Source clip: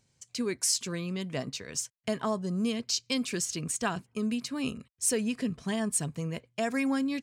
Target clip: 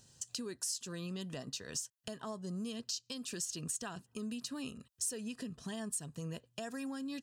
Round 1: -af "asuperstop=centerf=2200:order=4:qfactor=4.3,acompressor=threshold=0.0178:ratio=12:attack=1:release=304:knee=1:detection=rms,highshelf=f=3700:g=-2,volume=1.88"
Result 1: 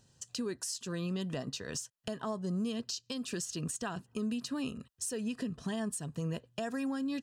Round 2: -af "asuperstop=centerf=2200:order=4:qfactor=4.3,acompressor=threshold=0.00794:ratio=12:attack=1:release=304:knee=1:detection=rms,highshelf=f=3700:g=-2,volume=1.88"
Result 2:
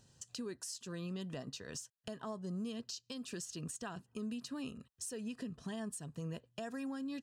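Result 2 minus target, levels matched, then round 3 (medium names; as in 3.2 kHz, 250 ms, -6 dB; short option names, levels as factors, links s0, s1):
8 kHz band -4.5 dB
-af "asuperstop=centerf=2200:order=4:qfactor=4.3,acompressor=threshold=0.00794:ratio=12:attack=1:release=304:knee=1:detection=rms,highshelf=f=3700:g=7,volume=1.88"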